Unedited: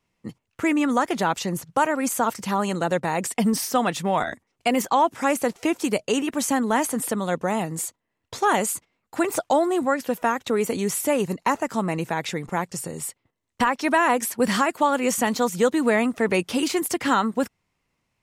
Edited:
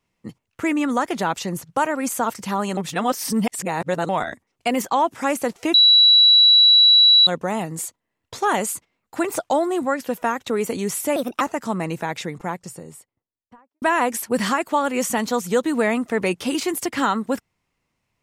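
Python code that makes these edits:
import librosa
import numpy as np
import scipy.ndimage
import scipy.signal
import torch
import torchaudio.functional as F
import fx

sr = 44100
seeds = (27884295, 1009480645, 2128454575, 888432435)

y = fx.studio_fade_out(x, sr, start_s=12.11, length_s=1.79)
y = fx.edit(y, sr, fx.reverse_span(start_s=2.77, length_s=1.32),
    fx.bleep(start_s=5.74, length_s=1.53, hz=3920.0, db=-9.0),
    fx.speed_span(start_s=11.16, length_s=0.33, speed=1.33), tone=tone)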